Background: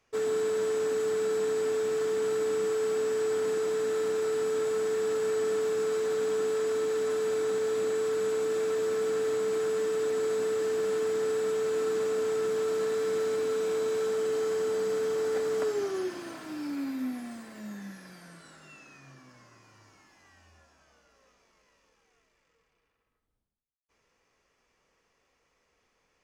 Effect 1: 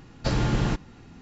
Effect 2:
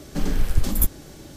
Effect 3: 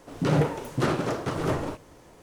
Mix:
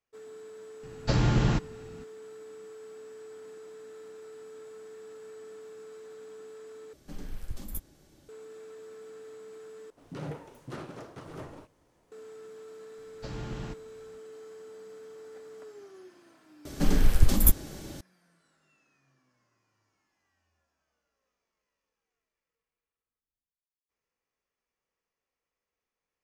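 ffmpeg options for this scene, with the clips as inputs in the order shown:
ffmpeg -i bed.wav -i cue0.wav -i cue1.wav -i cue2.wav -filter_complex "[1:a]asplit=2[link_01][link_02];[2:a]asplit=2[link_03][link_04];[0:a]volume=-18dB[link_05];[link_01]equalizer=frequency=120:width=1.5:gain=3[link_06];[link_02]dynaudnorm=framelen=200:gausssize=3:maxgain=3dB[link_07];[link_05]asplit=3[link_08][link_09][link_10];[link_08]atrim=end=6.934[link_11];[link_03]atrim=end=1.36,asetpts=PTS-STARTPTS,volume=-17.5dB[link_12];[link_09]atrim=start=8.286:end=9.904[link_13];[3:a]atrim=end=2.22,asetpts=PTS-STARTPTS,volume=-16dB[link_14];[link_10]atrim=start=12.116[link_15];[link_06]atrim=end=1.21,asetpts=PTS-STARTPTS,volume=-1.5dB,afade=type=in:duration=0.004:curve=hsin,afade=type=out:start_time=1.206:duration=0.004:curve=hsin,adelay=830[link_16];[link_07]atrim=end=1.21,asetpts=PTS-STARTPTS,volume=-17dB,afade=type=in:duration=0.004:curve=hsin,afade=type=out:start_time=1.206:duration=0.004:curve=hsin,adelay=12980[link_17];[link_04]atrim=end=1.36,asetpts=PTS-STARTPTS,afade=type=in:duration=0.004:curve=hsin,afade=type=out:start_time=1.356:duration=0.004:curve=hsin,adelay=16650[link_18];[link_11][link_12]acrossfade=duration=0.004:curve1=hsin:curve2=hsin[link_19];[link_19][link_13]acrossfade=duration=0.004:curve1=hsin:curve2=hsin[link_20];[link_20][link_14]acrossfade=duration=0.004:curve1=hsin:curve2=hsin[link_21];[link_21][link_15]acrossfade=duration=0.004:curve1=hsin:curve2=hsin[link_22];[link_22][link_16][link_17][link_18]amix=inputs=4:normalize=0" out.wav

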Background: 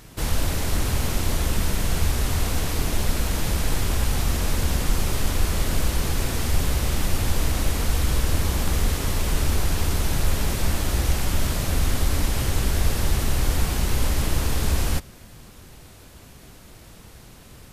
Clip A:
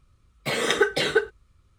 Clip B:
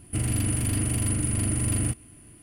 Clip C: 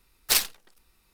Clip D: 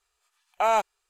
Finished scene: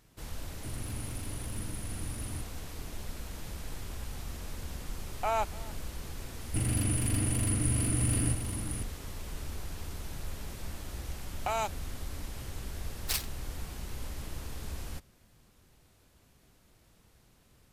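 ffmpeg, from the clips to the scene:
ffmpeg -i bed.wav -i cue0.wav -i cue1.wav -i cue2.wav -i cue3.wav -filter_complex "[2:a]asplit=2[link_01][link_02];[4:a]asplit=2[link_03][link_04];[0:a]volume=-17.5dB[link_05];[link_03]aecho=1:1:286:0.0891[link_06];[link_02]aecho=1:1:1056:0.422[link_07];[link_04]acrossover=split=170|3000[link_08][link_09][link_10];[link_09]acompressor=threshold=-26dB:ratio=6:attack=3.2:release=140:knee=2.83:detection=peak[link_11];[link_08][link_11][link_10]amix=inputs=3:normalize=0[link_12];[link_01]atrim=end=2.42,asetpts=PTS-STARTPTS,volume=-16dB,afade=type=in:duration=0.004:curve=hsin,afade=type=out:start_time=2.416:duration=0.004:curve=hsin,adelay=500[link_13];[link_06]atrim=end=1.09,asetpts=PTS-STARTPTS,volume=-8dB,afade=type=in:duration=0.004:curve=hsin,afade=type=out:start_time=1.086:duration=0.004:curve=hsin,adelay=4630[link_14];[link_07]atrim=end=2.42,asetpts=PTS-STARTPTS,volume=-4dB,afade=type=in:duration=0.004:curve=hsin,afade=type=out:start_time=2.416:duration=0.004:curve=hsin,adelay=6410[link_15];[link_12]atrim=end=1.09,asetpts=PTS-STARTPTS,volume=-2dB,afade=type=in:duration=0.004:curve=hsin,afade=type=out:start_time=1.086:duration=0.004:curve=hsin,adelay=10860[link_16];[3:a]atrim=end=1.13,asetpts=PTS-STARTPTS,volume=-11dB,afade=type=in:duration=0.004:curve=hsin,afade=type=out:start_time=1.126:duration=0.004:curve=hsin,adelay=12790[link_17];[link_05][link_13][link_14][link_15][link_16][link_17]amix=inputs=6:normalize=0" out.wav

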